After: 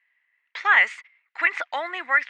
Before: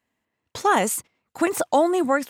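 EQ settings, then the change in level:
high-pass with resonance 2,000 Hz, resonance Q 4.9
high-frequency loss of the air 140 metres
head-to-tape spacing loss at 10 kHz 26 dB
+8.5 dB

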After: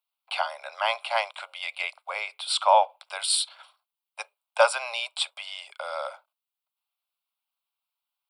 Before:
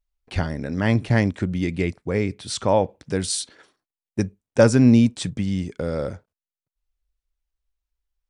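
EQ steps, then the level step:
Butterworth high-pass 500 Hz 96 dB per octave
phaser with its sweep stopped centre 1,800 Hz, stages 6
+7.5 dB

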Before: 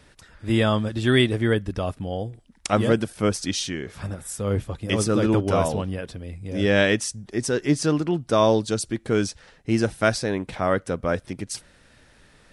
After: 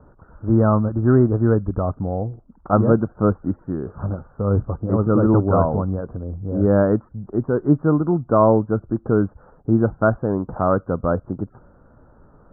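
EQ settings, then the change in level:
Butterworth low-pass 1,400 Hz 72 dB per octave
dynamic equaliser 470 Hz, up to −3 dB, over −31 dBFS, Q 0.83
high-frequency loss of the air 220 metres
+6.5 dB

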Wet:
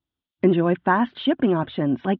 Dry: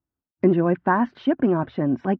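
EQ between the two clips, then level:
low-pass with resonance 3,400 Hz, resonance Q 5.9
0.0 dB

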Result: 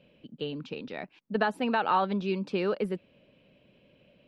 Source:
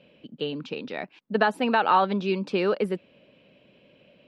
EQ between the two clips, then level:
low-shelf EQ 110 Hz +11.5 dB
−5.5 dB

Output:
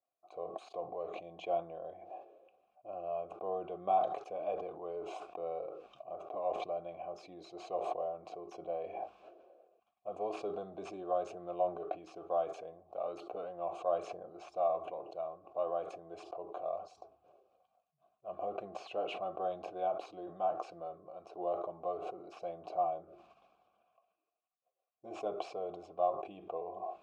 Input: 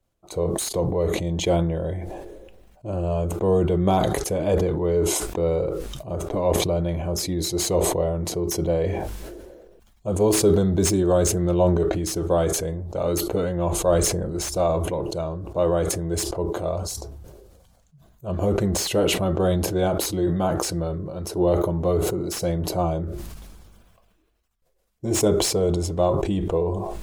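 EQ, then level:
formant filter a
high-pass filter 160 Hz 6 dB per octave
high-frequency loss of the air 94 metres
−3.0 dB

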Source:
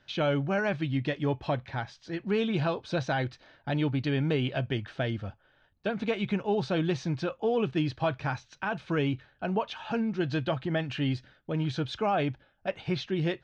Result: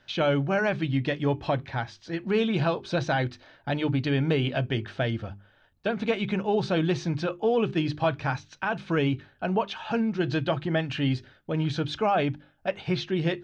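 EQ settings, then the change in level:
mains-hum notches 50/100/150/200/250/300/350/400 Hz
+3.5 dB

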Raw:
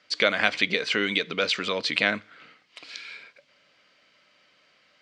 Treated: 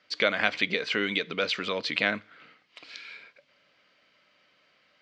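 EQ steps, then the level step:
high-frequency loss of the air 77 metres
−2.0 dB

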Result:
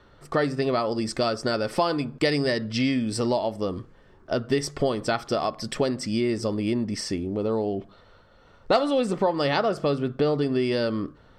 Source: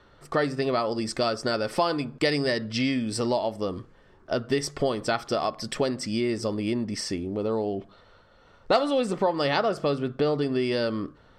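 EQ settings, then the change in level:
low-shelf EQ 390 Hz +3 dB
0.0 dB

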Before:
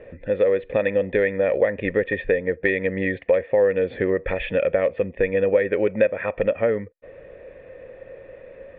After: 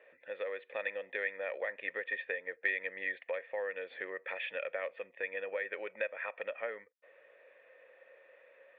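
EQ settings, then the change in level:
high-pass filter 1,000 Hz 12 dB per octave
−8.0 dB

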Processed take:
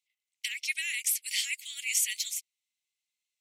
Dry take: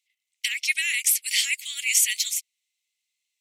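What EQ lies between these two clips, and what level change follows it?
high-pass filter 1,300 Hz 12 dB per octave
−7.5 dB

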